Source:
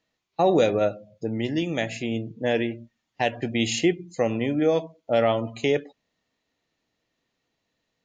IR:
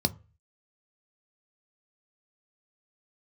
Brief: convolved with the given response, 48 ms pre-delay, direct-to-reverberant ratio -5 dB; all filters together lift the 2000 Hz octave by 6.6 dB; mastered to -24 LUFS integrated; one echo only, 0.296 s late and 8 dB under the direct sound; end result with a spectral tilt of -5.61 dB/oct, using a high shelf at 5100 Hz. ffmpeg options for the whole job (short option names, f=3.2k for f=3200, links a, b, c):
-filter_complex "[0:a]equalizer=f=2k:t=o:g=7,highshelf=f=5.1k:g=5.5,aecho=1:1:296:0.398,asplit=2[a][b];[1:a]atrim=start_sample=2205,adelay=48[c];[b][c]afir=irnorm=-1:irlink=0,volume=-2.5dB[d];[a][d]amix=inputs=2:normalize=0,volume=-10.5dB"